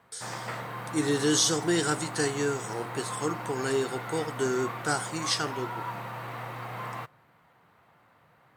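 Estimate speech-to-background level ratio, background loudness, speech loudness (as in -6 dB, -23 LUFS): 8.5 dB, -37.5 LUFS, -29.0 LUFS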